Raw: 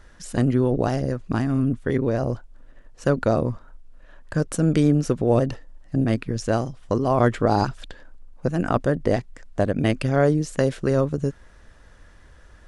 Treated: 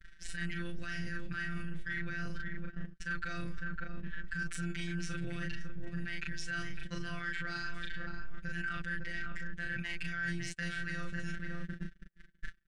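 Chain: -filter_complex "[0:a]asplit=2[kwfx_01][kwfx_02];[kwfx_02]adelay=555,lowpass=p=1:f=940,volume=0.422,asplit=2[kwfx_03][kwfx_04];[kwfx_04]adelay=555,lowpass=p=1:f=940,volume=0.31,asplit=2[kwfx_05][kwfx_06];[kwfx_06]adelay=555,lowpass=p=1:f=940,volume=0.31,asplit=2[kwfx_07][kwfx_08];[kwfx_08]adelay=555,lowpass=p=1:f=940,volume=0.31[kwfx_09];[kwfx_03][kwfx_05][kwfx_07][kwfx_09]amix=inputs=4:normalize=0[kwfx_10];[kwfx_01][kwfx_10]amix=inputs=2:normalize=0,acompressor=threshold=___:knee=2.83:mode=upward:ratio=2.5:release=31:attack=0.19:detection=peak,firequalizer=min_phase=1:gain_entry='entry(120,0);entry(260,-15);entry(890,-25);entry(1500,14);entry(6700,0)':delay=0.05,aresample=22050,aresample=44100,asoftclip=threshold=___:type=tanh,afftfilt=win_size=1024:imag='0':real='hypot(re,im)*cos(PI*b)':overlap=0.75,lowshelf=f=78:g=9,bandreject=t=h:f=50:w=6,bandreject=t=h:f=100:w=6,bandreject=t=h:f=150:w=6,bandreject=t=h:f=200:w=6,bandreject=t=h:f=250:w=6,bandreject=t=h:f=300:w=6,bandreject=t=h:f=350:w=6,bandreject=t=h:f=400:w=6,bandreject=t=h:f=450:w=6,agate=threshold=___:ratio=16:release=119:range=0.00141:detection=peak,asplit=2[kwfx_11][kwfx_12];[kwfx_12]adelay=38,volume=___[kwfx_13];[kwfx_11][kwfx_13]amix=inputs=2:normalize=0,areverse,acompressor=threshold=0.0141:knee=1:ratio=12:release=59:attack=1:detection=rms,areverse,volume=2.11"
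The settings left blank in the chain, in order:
0.02, 0.398, 0.02, 0.562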